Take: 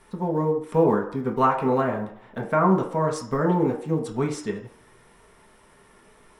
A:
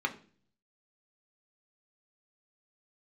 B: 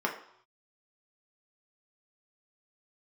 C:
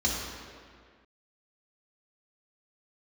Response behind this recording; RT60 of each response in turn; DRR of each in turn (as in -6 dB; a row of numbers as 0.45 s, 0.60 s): B; 0.45 s, 0.70 s, 1.9 s; 3.0 dB, -0.5 dB, -5.5 dB